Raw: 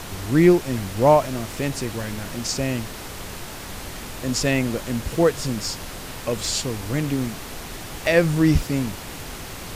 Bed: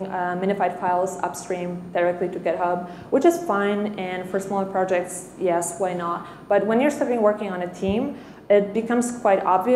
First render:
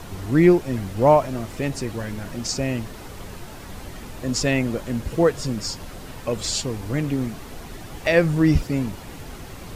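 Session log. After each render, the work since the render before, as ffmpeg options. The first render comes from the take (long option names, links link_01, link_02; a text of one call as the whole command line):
ffmpeg -i in.wav -af "afftdn=noise_reduction=8:noise_floor=-35" out.wav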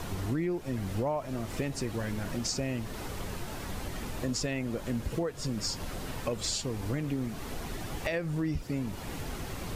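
ffmpeg -i in.wav -af "alimiter=limit=-15.5dB:level=0:latency=1:release=423,acompressor=threshold=-31dB:ratio=2.5" out.wav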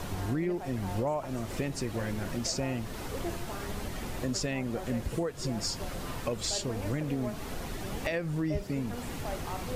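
ffmpeg -i in.wav -i bed.wav -filter_complex "[1:a]volume=-21.5dB[link_01];[0:a][link_01]amix=inputs=2:normalize=0" out.wav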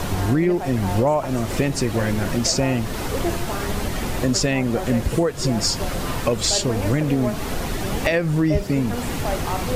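ffmpeg -i in.wav -af "volume=12dB" out.wav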